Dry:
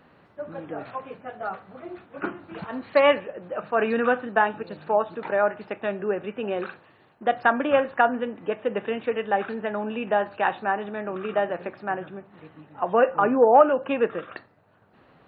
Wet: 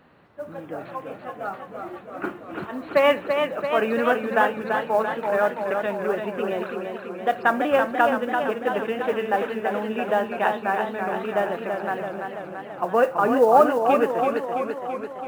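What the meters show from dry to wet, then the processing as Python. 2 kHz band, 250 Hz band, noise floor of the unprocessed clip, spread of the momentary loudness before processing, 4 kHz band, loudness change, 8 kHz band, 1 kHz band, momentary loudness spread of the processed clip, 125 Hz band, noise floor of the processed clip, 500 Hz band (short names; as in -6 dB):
+2.0 dB, +2.0 dB, -57 dBFS, 17 LU, +2.0 dB, +1.0 dB, n/a, +2.0 dB, 15 LU, +2.0 dB, -41 dBFS, +1.5 dB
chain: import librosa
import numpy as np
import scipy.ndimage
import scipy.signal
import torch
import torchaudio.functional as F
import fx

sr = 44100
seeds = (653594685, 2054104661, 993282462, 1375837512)

y = fx.mod_noise(x, sr, seeds[0], snr_db=32)
y = fx.echo_warbled(y, sr, ms=335, feedback_pct=66, rate_hz=2.8, cents=71, wet_db=-5.5)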